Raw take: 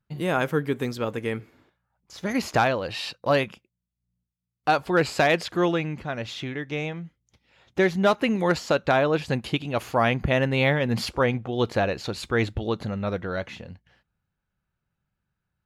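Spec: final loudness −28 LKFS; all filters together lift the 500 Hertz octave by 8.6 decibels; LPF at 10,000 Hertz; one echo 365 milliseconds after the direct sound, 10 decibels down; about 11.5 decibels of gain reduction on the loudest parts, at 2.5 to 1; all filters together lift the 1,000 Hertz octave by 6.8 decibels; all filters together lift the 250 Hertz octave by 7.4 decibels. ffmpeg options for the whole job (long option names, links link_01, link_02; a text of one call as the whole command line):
ffmpeg -i in.wav -af "lowpass=10000,equalizer=frequency=250:width_type=o:gain=7,equalizer=frequency=500:width_type=o:gain=7,equalizer=frequency=1000:width_type=o:gain=6,acompressor=threshold=-27dB:ratio=2.5,aecho=1:1:365:0.316" out.wav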